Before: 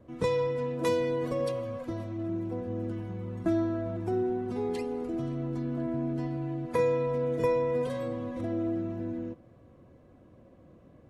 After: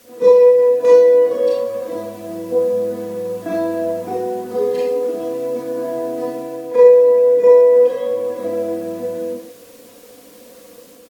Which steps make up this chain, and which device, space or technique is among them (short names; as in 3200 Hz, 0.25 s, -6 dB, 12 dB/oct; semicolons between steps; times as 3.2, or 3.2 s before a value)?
comb 4.2 ms, depth 65%; pre-echo 38 ms -15 dB; filmed off a television (BPF 260–6800 Hz; bell 480 Hz +8 dB 0.3 oct; reverb RT60 0.45 s, pre-delay 27 ms, DRR -4 dB; white noise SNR 35 dB; AGC gain up to 4 dB; AAC 96 kbps 44100 Hz)